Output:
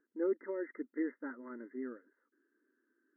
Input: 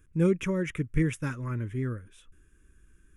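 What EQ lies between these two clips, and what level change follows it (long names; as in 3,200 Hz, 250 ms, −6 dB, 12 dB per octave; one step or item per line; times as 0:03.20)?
linear-phase brick-wall band-pass 230–2,100 Hz
high-frequency loss of the air 490 metres
notch filter 1,100 Hz, Q 7
−5.0 dB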